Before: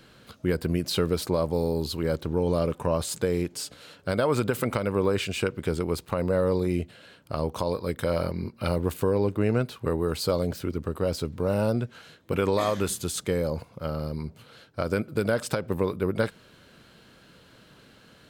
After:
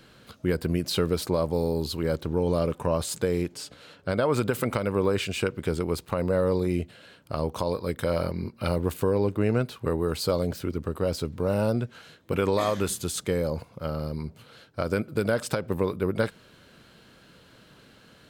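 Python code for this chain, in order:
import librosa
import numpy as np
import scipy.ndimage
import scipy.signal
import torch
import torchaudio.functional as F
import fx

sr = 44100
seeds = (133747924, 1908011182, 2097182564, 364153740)

y = fx.high_shelf(x, sr, hz=6000.0, db=-8.5, at=(3.54, 4.34))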